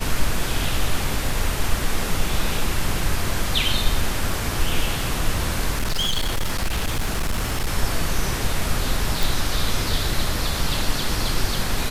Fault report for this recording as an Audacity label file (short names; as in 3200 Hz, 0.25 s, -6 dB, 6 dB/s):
5.710000	7.720000	clipped -18 dBFS
9.230000	9.230000	pop